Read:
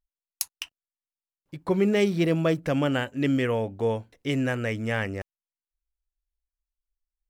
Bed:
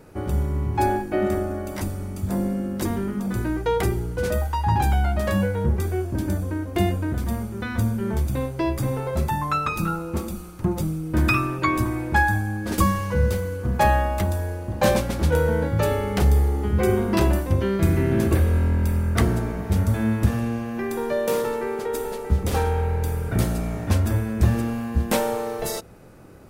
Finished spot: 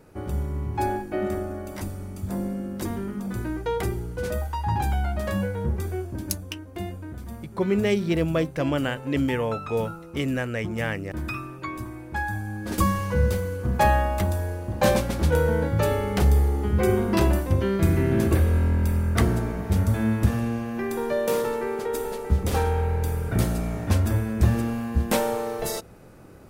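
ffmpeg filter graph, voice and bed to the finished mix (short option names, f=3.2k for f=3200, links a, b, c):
-filter_complex "[0:a]adelay=5900,volume=-0.5dB[a];[1:a]volume=6dB,afade=t=out:st=5.95:d=0.5:silence=0.446684,afade=t=in:st=12.11:d=0.91:silence=0.298538[b];[a][b]amix=inputs=2:normalize=0"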